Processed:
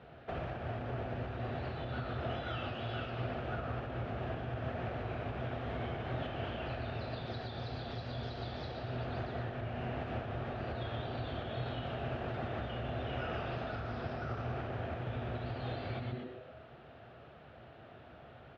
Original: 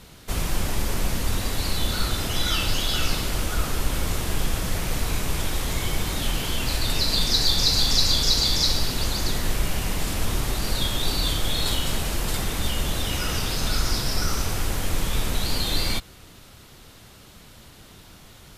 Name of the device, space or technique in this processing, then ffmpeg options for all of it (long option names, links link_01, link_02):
bass amplifier: -filter_complex "[0:a]asplit=6[link_01][link_02][link_03][link_04][link_05][link_06];[link_02]adelay=121,afreqshift=-130,volume=-6.5dB[link_07];[link_03]adelay=242,afreqshift=-260,volume=-14.5dB[link_08];[link_04]adelay=363,afreqshift=-390,volume=-22.4dB[link_09];[link_05]adelay=484,afreqshift=-520,volume=-30.4dB[link_10];[link_06]adelay=605,afreqshift=-650,volume=-38.3dB[link_11];[link_01][link_07][link_08][link_09][link_10][link_11]amix=inputs=6:normalize=0,acompressor=threshold=-25dB:ratio=6,highpass=frequency=76:width=0.5412,highpass=frequency=76:width=1.3066,equalizer=frequency=94:width_type=q:width=4:gain=-9,equalizer=frequency=190:width_type=q:width=4:gain=-10,equalizer=frequency=290:width_type=q:width=4:gain=-5,equalizer=frequency=680:width_type=q:width=4:gain=9,equalizer=frequency=1000:width_type=q:width=4:gain=-8,equalizer=frequency=2100:width_type=q:width=4:gain=-8,lowpass=frequency=2300:width=0.5412,lowpass=frequency=2300:width=1.3066,volume=-2.5dB"